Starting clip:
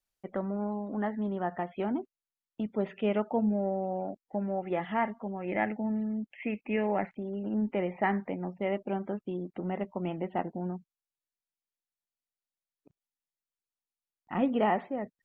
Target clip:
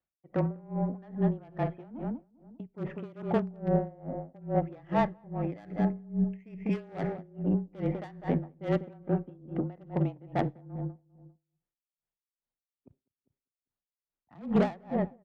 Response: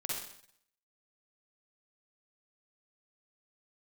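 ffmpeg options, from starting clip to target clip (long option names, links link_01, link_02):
-filter_complex "[0:a]aeval=exprs='(tanh(14.1*val(0)+0.35)-tanh(0.35))/14.1':channel_layout=same,asettb=1/sr,asplit=3[link_01][link_02][link_03];[link_01]atrim=end=4.954[link_04];[link_02]atrim=start=4.95:end=5.58,asetpts=PTS-STARTPTS,afade=type=in:duration=0.004:curve=qsin,afade=type=out:start_time=0.626:duration=0.004:curve=qsin,highshelf=frequency=3000:gain=-11.5[link_05];[link_03]atrim=start=5.576[link_06];[link_04][link_05]acrossfade=duration=0.004:curve1=hsin:curve2=qsin[link_07];[link_07][link_06]acrossfade=duration=0.004:curve1=qsin:curve2=hsin,asplit=2[link_08][link_09];[link_09]aeval=exprs='(mod(13.3*val(0)+1,2)-1)/13.3':channel_layout=same,volume=-11.5dB[link_10];[link_08][link_10]amix=inputs=2:normalize=0,adynamicsmooth=sensitivity=2.5:basefreq=2000,lowshelf=frequency=230:gain=7,asplit=2[link_11][link_12];[link_12]adelay=199,lowpass=frequency=1400:poles=1,volume=-8dB,asplit=2[link_13][link_14];[link_14]adelay=199,lowpass=frequency=1400:poles=1,volume=0.35,asplit=2[link_15][link_16];[link_16]adelay=199,lowpass=frequency=1400:poles=1,volume=0.35,asplit=2[link_17][link_18];[link_18]adelay=199,lowpass=frequency=1400:poles=1,volume=0.35[link_19];[link_11][link_13][link_15][link_17][link_19]amix=inputs=5:normalize=0,afreqshift=-27,highpass=55,asplit=2[link_20][link_21];[1:a]atrim=start_sample=2205[link_22];[link_21][link_22]afir=irnorm=-1:irlink=0,volume=-23dB[link_23];[link_20][link_23]amix=inputs=2:normalize=0,aeval=exprs='val(0)*pow(10,-27*(0.5-0.5*cos(2*PI*2.4*n/s))/20)':channel_layout=same,volume=3.5dB"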